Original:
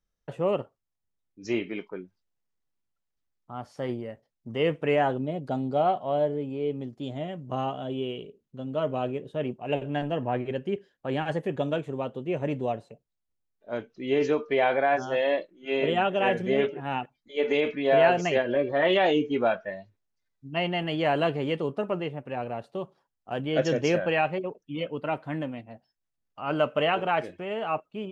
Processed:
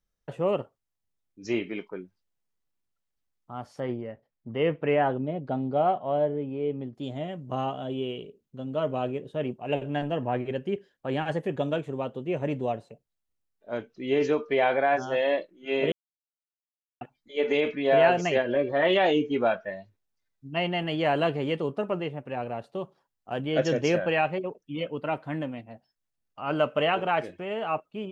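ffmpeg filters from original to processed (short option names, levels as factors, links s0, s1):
-filter_complex "[0:a]asettb=1/sr,asplit=3[s0][s1][s2];[s0]atrim=end=3.804[s3];[s1]atrim=start=3.8:end=6.95,asetpts=PTS-STARTPTS,afade=t=in:d=0.004:c=qsin,afade=t=out:st=3.146:d=0.004:c=qsin,lowpass=2800[s4];[s2]atrim=start=6.946[s5];[s3][s4]acrossfade=d=0.004:c1=hsin:c2=qsin[s6];[s6][s5]acrossfade=d=0.004:c1=qsin:c2=hsin,asplit=3[s7][s8][s9];[s7]atrim=end=15.92,asetpts=PTS-STARTPTS,afade=t=out:st=15.916:d=0.004:c=hsin[s10];[s8]atrim=start=15.92:end=17.01,asetpts=PTS-STARTPTS,volume=0[s11];[s9]atrim=start=17.01,asetpts=PTS-STARTPTS,afade=t=in:d=0.004:c=hsin[s12];[s10][s11][s12]concat=n=3:v=0:a=1"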